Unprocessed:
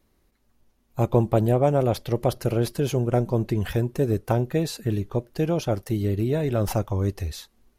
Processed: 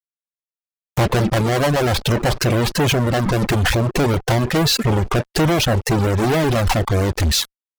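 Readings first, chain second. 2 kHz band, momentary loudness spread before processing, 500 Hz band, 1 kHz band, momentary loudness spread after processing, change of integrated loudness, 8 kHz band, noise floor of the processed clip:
+17.0 dB, 7 LU, +4.0 dB, +9.0 dB, 3 LU, +6.5 dB, +14.5 dB, below −85 dBFS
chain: treble cut that deepens with the level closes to 2,400 Hz, closed at −18 dBFS
in parallel at −0.5 dB: brickwall limiter −19.5 dBFS, peak gain reduction 11.5 dB
on the sum: fuzz pedal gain 42 dB, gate −39 dBFS
reverb reduction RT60 1.2 s

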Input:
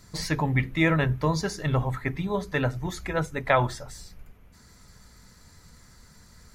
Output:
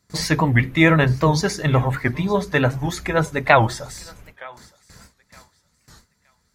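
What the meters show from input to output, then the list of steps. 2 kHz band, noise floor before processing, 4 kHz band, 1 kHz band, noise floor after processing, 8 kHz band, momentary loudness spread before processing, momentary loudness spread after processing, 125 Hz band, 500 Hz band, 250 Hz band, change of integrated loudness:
+8.5 dB, −54 dBFS, +8.0 dB, +8.0 dB, −67 dBFS, +8.0 dB, 8 LU, 9 LU, +7.0 dB, +7.5 dB, +7.5 dB, +7.5 dB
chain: high-pass filter 75 Hz 6 dB per octave
noise gate with hold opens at −43 dBFS
feedback echo with a high-pass in the loop 917 ms, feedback 28%, high-pass 880 Hz, level −20.5 dB
wow of a warped record 78 rpm, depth 160 cents
level +8 dB

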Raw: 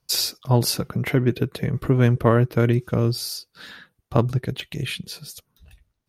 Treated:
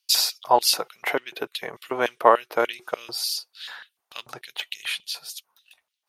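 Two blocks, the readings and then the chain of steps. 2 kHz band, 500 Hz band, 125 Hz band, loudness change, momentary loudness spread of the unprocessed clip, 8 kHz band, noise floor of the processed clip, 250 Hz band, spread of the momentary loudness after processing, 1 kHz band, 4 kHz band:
+2.5 dB, −1.0 dB, −33.5 dB, −2.0 dB, 16 LU, +2.0 dB, −81 dBFS, −15.0 dB, 19 LU, +7.5 dB, +3.5 dB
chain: auto-filter high-pass square 3.4 Hz 820–3,000 Hz
dynamic equaliser 380 Hz, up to +6 dB, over −40 dBFS, Q 0.75
level +1 dB

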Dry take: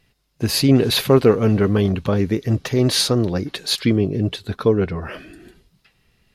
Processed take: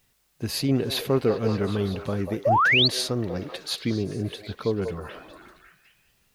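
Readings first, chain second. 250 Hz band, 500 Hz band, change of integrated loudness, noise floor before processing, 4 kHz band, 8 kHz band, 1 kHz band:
−9.0 dB, −7.5 dB, −6.0 dB, −65 dBFS, −3.5 dB, −9.0 dB, +3.5 dB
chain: echo through a band-pass that steps 191 ms, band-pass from 650 Hz, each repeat 0.7 octaves, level −3 dB
bit-depth reduction 10 bits, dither triangular
sound drawn into the spectrogram rise, 0:02.45–0:02.88, 520–4,700 Hz −10 dBFS
level −9 dB

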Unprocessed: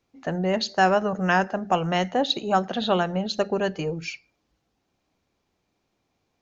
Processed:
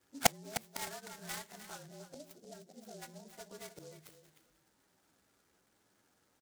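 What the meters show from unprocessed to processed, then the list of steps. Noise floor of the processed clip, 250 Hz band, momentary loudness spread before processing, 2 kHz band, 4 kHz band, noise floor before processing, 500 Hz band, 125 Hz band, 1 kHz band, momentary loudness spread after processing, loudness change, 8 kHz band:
−75 dBFS, −23.0 dB, 9 LU, −16.5 dB, −14.0 dB, −76 dBFS, −21.0 dB, −21.5 dB, −19.0 dB, 22 LU, −16.0 dB, can't be measured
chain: partials spread apart or drawn together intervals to 112%
high-pass filter 180 Hz 6 dB per octave
noise gate −44 dBFS, range −14 dB
gain on a spectral selection 0:01.86–0:03.02, 790–5,100 Hz −18 dB
high-shelf EQ 6,000 Hz −10.5 dB
in parallel at 0 dB: downward compressor 6 to 1, threshold −32 dBFS, peak gain reduction 15 dB
on the sum: gate with flip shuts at −26 dBFS, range −39 dB
flat-topped bell 1,800 Hz +10.5 dB 1 octave
repeating echo 305 ms, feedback 17%, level −11.5 dB
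short delay modulated by noise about 5,600 Hz, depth 0.1 ms
level +12.5 dB

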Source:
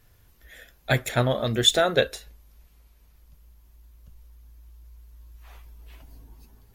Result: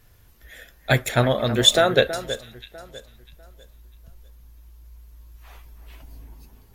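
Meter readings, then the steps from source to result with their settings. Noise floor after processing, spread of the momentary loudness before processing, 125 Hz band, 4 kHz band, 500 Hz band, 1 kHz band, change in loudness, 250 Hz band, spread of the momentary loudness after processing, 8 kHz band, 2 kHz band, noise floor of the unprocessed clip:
−54 dBFS, 15 LU, +3.0 dB, +3.5 dB, +4.0 dB, +4.0 dB, +3.0 dB, +4.0 dB, 16 LU, +3.5 dB, +3.5 dB, −58 dBFS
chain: delay that swaps between a low-pass and a high-pass 324 ms, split 2,200 Hz, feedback 50%, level −12 dB
level +3.5 dB

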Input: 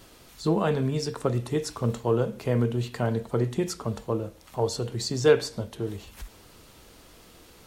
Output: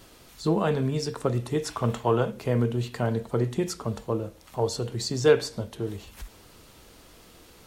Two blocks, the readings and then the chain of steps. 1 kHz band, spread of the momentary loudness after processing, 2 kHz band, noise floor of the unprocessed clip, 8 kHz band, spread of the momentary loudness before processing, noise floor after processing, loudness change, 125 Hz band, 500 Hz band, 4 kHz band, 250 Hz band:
+2.0 dB, 10 LU, +0.5 dB, −53 dBFS, 0.0 dB, 10 LU, −53 dBFS, 0.0 dB, 0.0 dB, 0.0 dB, 0.0 dB, 0.0 dB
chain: gain on a spectral selection 0:01.66–0:02.32, 590–3,700 Hz +6 dB

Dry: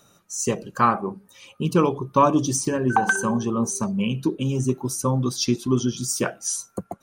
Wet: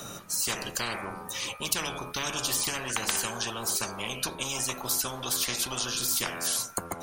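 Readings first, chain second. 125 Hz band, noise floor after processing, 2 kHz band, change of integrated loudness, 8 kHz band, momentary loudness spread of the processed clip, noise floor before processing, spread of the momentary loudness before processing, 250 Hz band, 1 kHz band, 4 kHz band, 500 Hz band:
−16.5 dB, −43 dBFS, −5.5 dB, −6.0 dB, −0.5 dB, 6 LU, −60 dBFS, 8 LU, −18.0 dB, −12.0 dB, +4.0 dB, −13.5 dB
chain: hum removal 84.88 Hz, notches 30
every bin compressed towards the loudest bin 10 to 1
level −3 dB

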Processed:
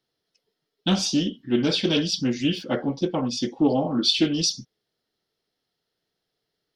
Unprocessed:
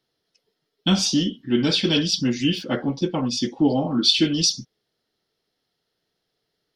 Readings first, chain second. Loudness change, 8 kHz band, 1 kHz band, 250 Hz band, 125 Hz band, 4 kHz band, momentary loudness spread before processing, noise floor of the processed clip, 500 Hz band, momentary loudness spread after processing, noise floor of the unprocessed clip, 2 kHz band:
−2.5 dB, −3.5 dB, −0.5 dB, −2.0 dB, −3.0 dB, −3.5 dB, 7 LU, −81 dBFS, +0.5 dB, 6 LU, −78 dBFS, −2.5 dB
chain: dynamic equaliser 560 Hz, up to +5 dB, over −32 dBFS, Q 0.88
highs frequency-modulated by the lows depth 0.13 ms
level −3.5 dB

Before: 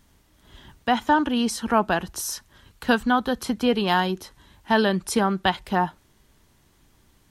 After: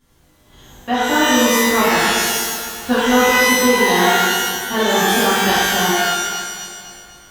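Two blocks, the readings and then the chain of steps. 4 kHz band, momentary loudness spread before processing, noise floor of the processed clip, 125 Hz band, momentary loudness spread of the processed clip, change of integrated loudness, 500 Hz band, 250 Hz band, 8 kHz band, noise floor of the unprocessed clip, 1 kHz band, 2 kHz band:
+13.0 dB, 9 LU, −53 dBFS, +3.0 dB, 10 LU, +8.5 dB, +8.5 dB, +5.5 dB, +15.5 dB, −61 dBFS, +7.0 dB, +12.0 dB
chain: feedback delay that plays each chunk backwards 124 ms, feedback 75%, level −12.5 dB
reverb with rising layers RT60 1.1 s, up +12 semitones, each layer −2 dB, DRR −11.5 dB
level −8 dB

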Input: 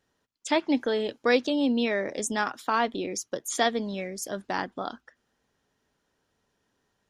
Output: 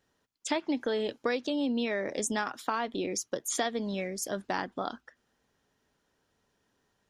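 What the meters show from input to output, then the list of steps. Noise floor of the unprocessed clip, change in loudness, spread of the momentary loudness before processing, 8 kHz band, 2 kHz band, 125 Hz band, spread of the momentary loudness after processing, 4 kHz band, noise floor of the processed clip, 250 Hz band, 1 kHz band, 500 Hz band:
−76 dBFS, −4.5 dB, 10 LU, −0.5 dB, −5.5 dB, −1.5 dB, 5 LU, −4.5 dB, −76 dBFS, −4.5 dB, −5.0 dB, −4.5 dB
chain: downward compressor 12 to 1, threshold −26 dBFS, peak gain reduction 10.5 dB

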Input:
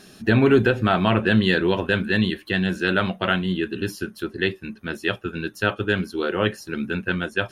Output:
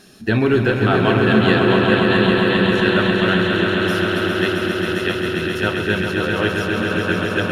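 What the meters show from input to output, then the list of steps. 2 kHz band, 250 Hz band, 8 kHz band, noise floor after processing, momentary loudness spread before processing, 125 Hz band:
+5.5 dB, +5.0 dB, +5.5 dB, −24 dBFS, 11 LU, +4.5 dB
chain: feedback delay that plays each chunk backwards 108 ms, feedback 85%, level −13.5 dB
on a send: echo that builds up and dies away 134 ms, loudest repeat 5, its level −6 dB

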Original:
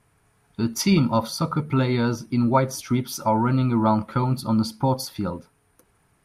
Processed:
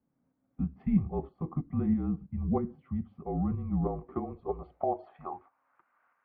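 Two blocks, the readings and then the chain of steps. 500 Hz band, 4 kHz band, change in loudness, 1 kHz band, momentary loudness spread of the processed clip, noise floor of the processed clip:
−10.0 dB, below −40 dB, −10.5 dB, −13.5 dB, 9 LU, −77 dBFS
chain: single-sideband voice off tune −160 Hz 150–2,900 Hz
shaped tremolo saw up 3.1 Hz, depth 45%
band-pass filter sweep 200 Hz → 1,300 Hz, 0:03.66–0:05.83
level +3.5 dB

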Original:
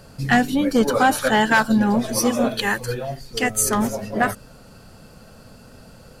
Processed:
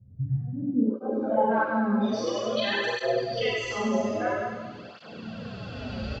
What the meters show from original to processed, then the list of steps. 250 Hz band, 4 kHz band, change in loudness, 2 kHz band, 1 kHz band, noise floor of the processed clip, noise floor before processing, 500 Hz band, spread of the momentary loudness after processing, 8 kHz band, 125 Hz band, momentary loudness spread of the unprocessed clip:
−7.0 dB, −5.5 dB, −7.5 dB, −10.0 dB, −8.0 dB, −46 dBFS, −46 dBFS, −3.5 dB, 14 LU, −20.5 dB, −3.5 dB, 8 LU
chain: camcorder AGC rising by 6.8 dB per second
high-pass filter 85 Hz
noise reduction from a noise print of the clip's start 14 dB
low-shelf EQ 460 Hz +4.5 dB
notch filter 930 Hz, Q 17
downward compressor, threshold −31 dBFS, peak gain reduction 19.5 dB
brickwall limiter −29.5 dBFS, peak gain reduction 10.5 dB
low-pass filter sweep 120 Hz → 3,200 Hz, 0:00.39–0:02.14
repeating echo 99 ms, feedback 55%, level −5.5 dB
four-comb reverb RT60 1.1 s, combs from 32 ms, DRR −5 dB
downsampling to 16,000 Hz
through-zero flanger with one copy inverted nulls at 0.5 Hz, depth 6.7 ms
level +6.5 dB

